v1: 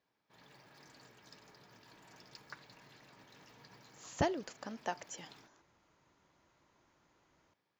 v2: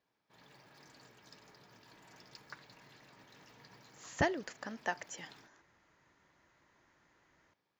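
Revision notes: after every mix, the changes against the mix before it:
speech: add peaking EQ 1.8 kHz +9 dB 0.53 oct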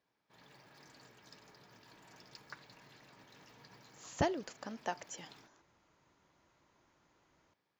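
speech: add peaking EQ 1.8 kHz -9 dB 0.53 oct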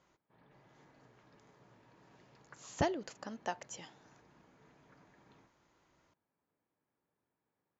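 speech: entry -1.40 s; background: add tape spacing loss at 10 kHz 45 dB

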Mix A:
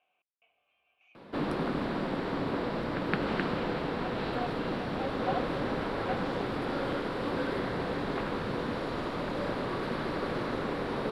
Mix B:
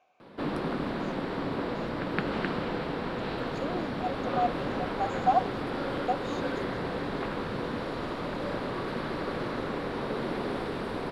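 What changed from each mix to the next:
speech: remove four-pole ladder low-pass 3.2 kHz, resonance 70%; background: entry -0.95 s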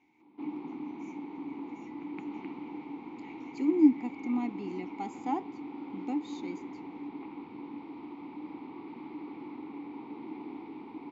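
speech: remove vowel filter a; master: add vowel filter u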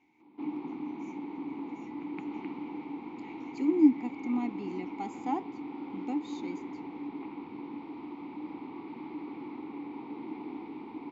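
reverb: on, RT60 2.7 s

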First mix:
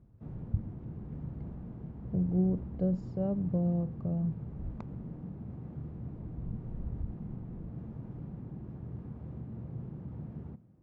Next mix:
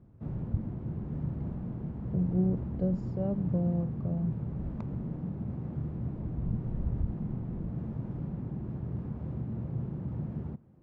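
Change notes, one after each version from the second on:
background +7.0 dB; reverb: off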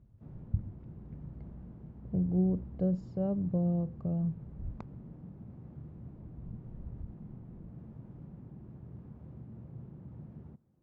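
background -12.0 dB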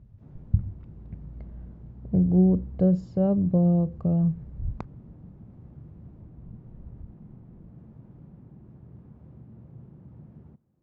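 speech +9.0 dB

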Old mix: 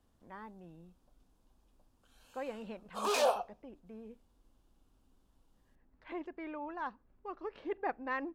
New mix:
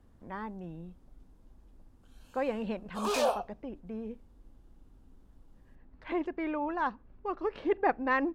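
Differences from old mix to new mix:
speech +8.0 dB; master: add bass shelf 250 Hz +5 dB

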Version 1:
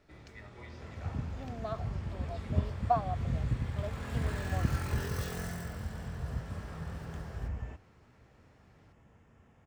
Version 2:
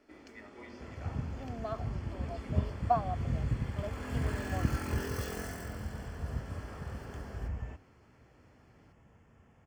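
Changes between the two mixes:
first sound: add resonant low shelf 190 Hz -9.5 dB, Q 3; master: add Butterworth band-stop 3.8 kHz, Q 7.4

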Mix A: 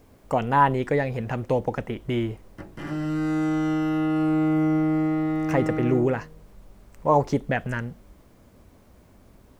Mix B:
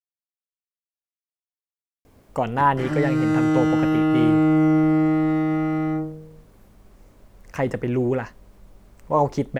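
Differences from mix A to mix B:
speech: entry +2.05 s; background +4.5 dB

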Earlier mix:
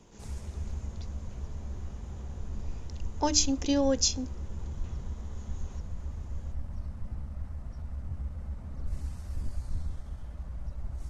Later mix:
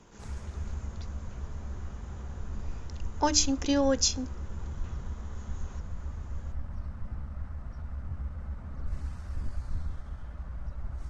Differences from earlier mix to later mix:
background: add distance through air 53 m; master: add peaking EQ 1.4 kHz +7.5 dB 1 oct

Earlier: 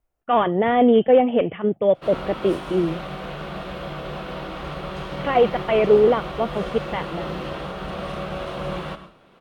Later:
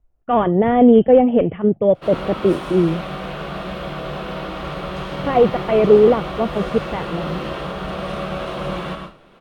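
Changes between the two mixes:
speech: add tilt EQ -3 dB/octave; background: send +10.0 dB

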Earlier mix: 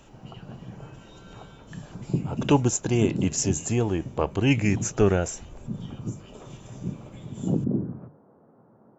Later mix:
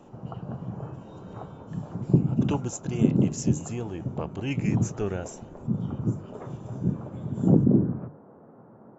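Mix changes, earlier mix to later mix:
speech -9.5 dB; background +6.0 dB

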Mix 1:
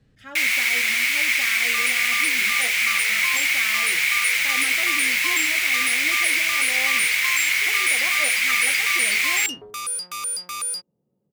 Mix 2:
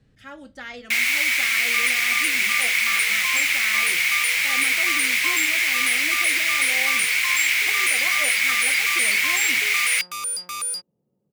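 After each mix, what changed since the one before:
first sound: entry +0.55 s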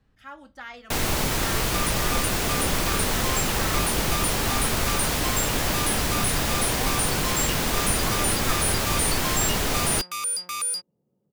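speech: add graphic EQ 125/250/500/1000/2000/4000/8000 Hz -10/-4/-7/+6/-5/-4/-7 dB; first sound: remove resonant high-pass 2.2 kHz, resonance Q 9.3

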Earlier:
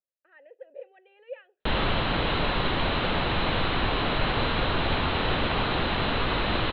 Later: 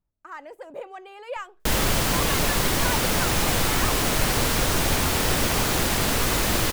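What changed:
speech: remove vowel filter e; master: remove rippled Chebyshev low-pass 4.1 kHz, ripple 3 dB

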